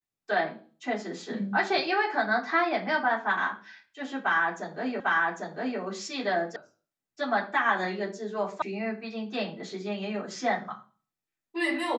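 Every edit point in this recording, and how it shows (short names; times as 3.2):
5 repeat of the last 0.8 s
6.56 sound cut off
8.62 sound cut off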